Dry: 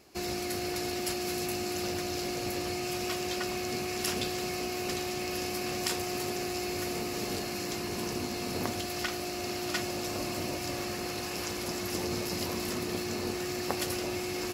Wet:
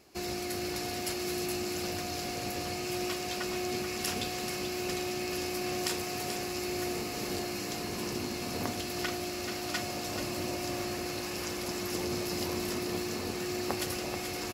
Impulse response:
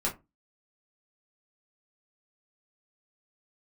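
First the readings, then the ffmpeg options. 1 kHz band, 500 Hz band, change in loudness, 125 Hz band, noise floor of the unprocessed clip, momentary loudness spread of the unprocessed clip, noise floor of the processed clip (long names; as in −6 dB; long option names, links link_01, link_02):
−1.0 dB, −1.0 dB, −1.0 dB, −1.0 dB, −36 dBFS, 2 LU, −37 dBFS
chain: -af "aecho=1:1:434:0.398,volume=-1.5dB"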